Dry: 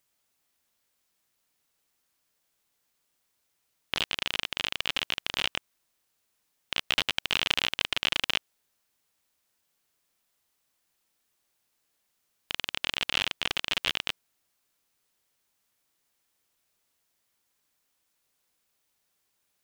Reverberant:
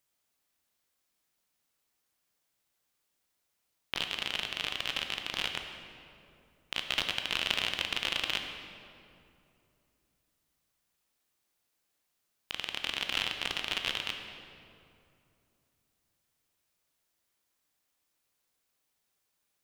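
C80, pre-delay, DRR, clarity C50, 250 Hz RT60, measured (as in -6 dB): 6.5 dB, 14 ms, 4.5 dB, 5.5 dB, 3.2 s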